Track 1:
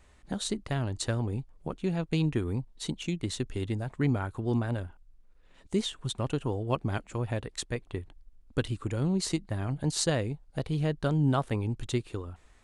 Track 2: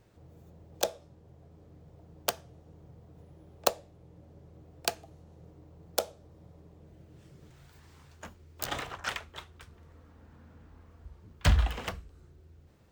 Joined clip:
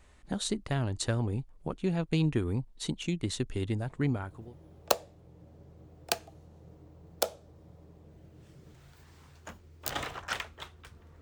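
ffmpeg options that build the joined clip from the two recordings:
-filter_complex "[0:a]apad=whole_dur=11.21,atrim=end=11.21,atrim=end=4.55,asetpts=PTS-STARTPTS[s0];[1:a]atrim=start=2.43:end=9.97,asetpts=PTS-STARTPTS[s1];[s0][s1]acrossfade=d=0.88:c1=qsin:c2=qsin"

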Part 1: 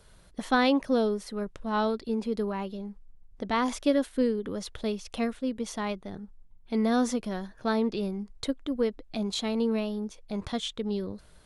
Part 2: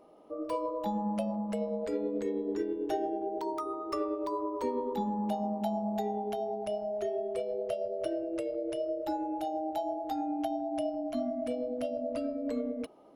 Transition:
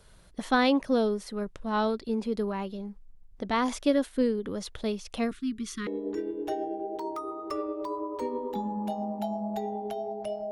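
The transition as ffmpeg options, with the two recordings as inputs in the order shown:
-filter_complex "[0:a]asettb=1/sr,asplit=3[s0][s1][s2];[s0]atrim=end=5.314[s3];[s1]atrim=start=5.31:end=5.87,asetpts=PTS-STARTPTS,afade=t=in:d=0.004:c=qsin,afade=t=out:st=0.556:d=0.004:c=qsin,asuperstop=centerf=680:order=20:qfactor=0.99[s4];[s2]atrim=start=5.866[s5];[s3][s4]acrossfade=d=0.004:c1=hsin:c2=qsin[s6];[s6][s5]acrossfade=d=0.004:c1=qsin:c2=hsin,apad=whole_dur=10.51,atrim=end=10.51,atrim=end=5.872[s7];[1:a]atrim=start=2.288:end=6.93[s8];[s7][s8]acrossfade=d=0.004:c1=hsin:c2=hsin"

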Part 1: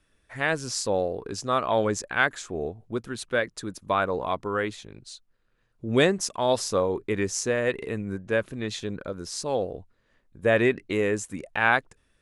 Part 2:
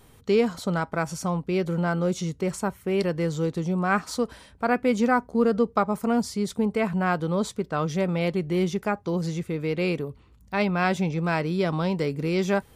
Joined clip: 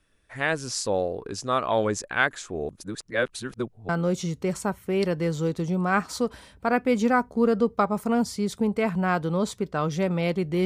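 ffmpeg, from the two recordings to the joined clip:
-filter_complex "[0:a]apad=whole_dur=10.65,atrim=end=10.65,asplit=2[s0][s1];[s0]atrim=end=2.692[s2];[s1]atrim=start=2.688:end=3.892,asetpts=PTS-STARTPTS,areverse[s3];[1:a]atrim=start=1.868:end=8.63[s4];[s2][s3]acrossfade=d=0.004:c1=hsin:c2=hsin[s5];[s5][s4]acrossfade=d=0.004:c1=hsin:c2=hsin"

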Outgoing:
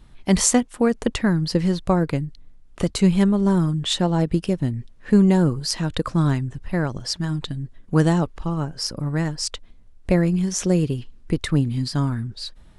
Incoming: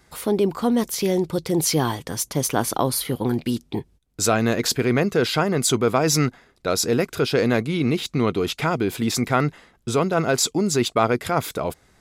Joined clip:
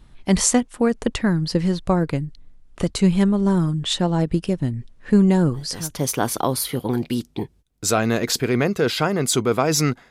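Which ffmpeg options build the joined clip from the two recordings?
-filter_complex "[0:a]apad=whole_dur=10.1,atrim=end=10.1,atrim=end=6.04,asetpts=PTS-STARTPTS[s0];[1:a]atrim=start=1.88:end=6.46,asetpts=PTS-STARTPTS[s1];[s0][s1]acrossfade=d=0.52:c1=tri:c2=tri"

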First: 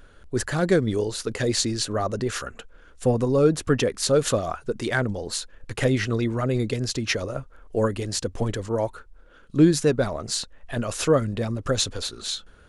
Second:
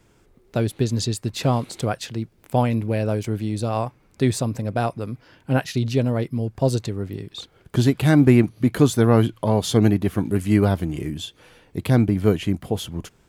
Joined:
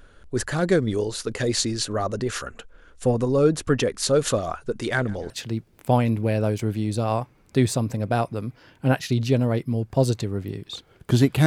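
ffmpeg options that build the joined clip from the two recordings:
-filter_complex "[0:a]asettb=1/sr,asplit=3[s0][s1][s2];[s0]atrim=end=4.554[s3];[s1]atrim=start=4.55:end=5.3,asetpts=PTS-STARTPTS,afade=t=in:d=0.004:c=qsin,afade=t=out:st=0.746:d=0.004:c=qsin,aecho=1:1:146|292|438|584:0.075|0.0405|0.0219|0.0118,atrim=end_sample=33075[s4];[s2]atrim=start=5.296[s5];[s3][s4]acrossfade=d=0.004:c1=hsin:c2=qsin[s6];[s6][s5]acrossfade=d=0.004:c1=qsin:c2=hsin,apad=whole_dur=11.46,atrim=end=11.46,atrim=end=5.302[s7];[1:a]atrim=start=1.948:end=8.11[s8];[s7][s8]acrossfade=d=0.004:c1=hsin:c2=hsin"

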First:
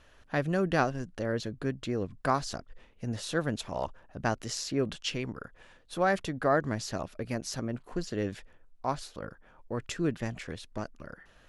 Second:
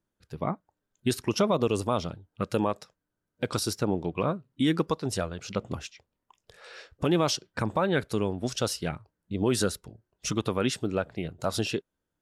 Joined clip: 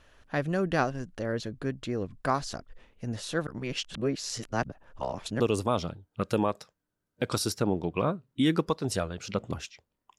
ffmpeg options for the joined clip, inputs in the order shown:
-filter_complex "[0:a]apad=whole_dur=10.18,atrim=end=10.18,asplit=2[s0][s1];[s0]atrim=end=3.472[s2];[s1]atrim=start=3.468:end=5.402,asetpts=PTS-STARTPTS,areverse[s3];[1:a]atrim=start=1.608:end=6.39[s4];[s2][s3]acrossfade=d=0.004:c1=hsin:c2=hsin[s5];[s5][s4]acrossfade=d=0.004:c1=hsin:c2=hsin"

